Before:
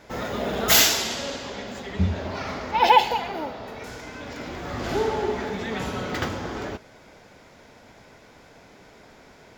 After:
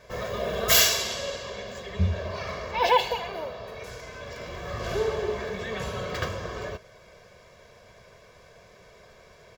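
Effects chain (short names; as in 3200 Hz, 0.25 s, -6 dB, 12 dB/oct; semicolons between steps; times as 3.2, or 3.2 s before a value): comb 1.8 ms, depth 84%; gain -4.5 dB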